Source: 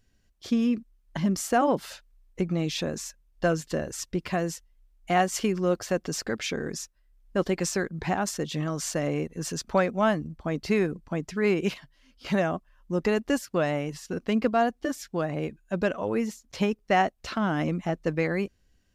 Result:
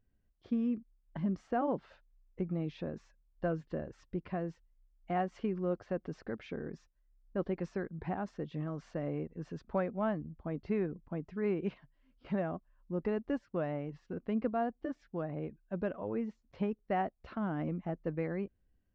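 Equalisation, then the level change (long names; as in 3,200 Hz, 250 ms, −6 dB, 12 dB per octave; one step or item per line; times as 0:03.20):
head-to-tape spacing loss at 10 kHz 45 dB
−7.0 dB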